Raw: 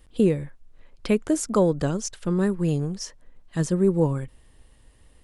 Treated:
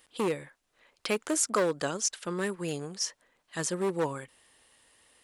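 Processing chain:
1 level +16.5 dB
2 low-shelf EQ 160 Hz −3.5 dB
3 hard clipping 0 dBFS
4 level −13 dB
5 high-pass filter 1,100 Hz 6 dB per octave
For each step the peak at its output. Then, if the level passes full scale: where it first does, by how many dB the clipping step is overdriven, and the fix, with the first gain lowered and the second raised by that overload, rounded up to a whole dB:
+7.0, +6.0, 0.0, −13.0, −12.5 dBFS
step 1, 6.0 dB
step 1 +10.5 dB, step 4 −7 dB

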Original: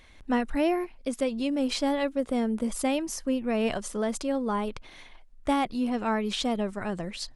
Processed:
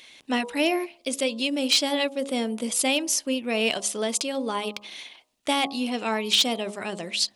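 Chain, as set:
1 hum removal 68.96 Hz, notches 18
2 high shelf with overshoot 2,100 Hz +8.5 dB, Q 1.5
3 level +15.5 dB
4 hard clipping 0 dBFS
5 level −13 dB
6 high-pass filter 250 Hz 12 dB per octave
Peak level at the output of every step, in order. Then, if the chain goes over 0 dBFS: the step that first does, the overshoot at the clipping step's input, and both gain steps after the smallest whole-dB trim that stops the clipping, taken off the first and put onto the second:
−14.0, −8.5, +7.0, 0.0, −13.0, −10.0 dBFS
step 3, 7.0 dB
step 3 +8.5 dB, step 5 −6 dB

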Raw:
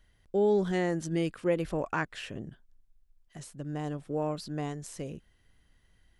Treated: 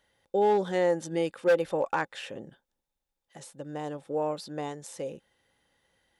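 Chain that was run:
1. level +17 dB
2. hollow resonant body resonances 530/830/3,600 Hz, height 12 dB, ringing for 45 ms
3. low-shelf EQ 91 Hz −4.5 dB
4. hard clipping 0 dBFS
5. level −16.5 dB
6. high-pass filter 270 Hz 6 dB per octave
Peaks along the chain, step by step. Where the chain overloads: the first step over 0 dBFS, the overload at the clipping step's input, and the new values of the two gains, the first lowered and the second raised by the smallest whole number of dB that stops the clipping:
+1.0, +9.0, +9.0, 0.0, −16.5, −13.0 dBFS
step 1, 9.0 dB
step 1 +8 dB, step 5 −7.5 dB

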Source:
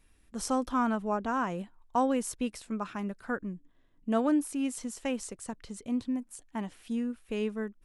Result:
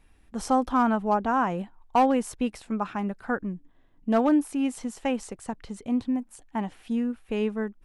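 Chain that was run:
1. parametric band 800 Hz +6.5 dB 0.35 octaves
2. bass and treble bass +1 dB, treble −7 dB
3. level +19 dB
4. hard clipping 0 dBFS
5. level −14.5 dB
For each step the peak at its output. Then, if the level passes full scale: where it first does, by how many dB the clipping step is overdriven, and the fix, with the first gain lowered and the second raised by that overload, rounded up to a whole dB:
−14.5, −14.5, +4.5, 0.0, −14.5 dBFS
step 3, 4.5 dB
step 3 +14 dB, step 5 −9.5 dB

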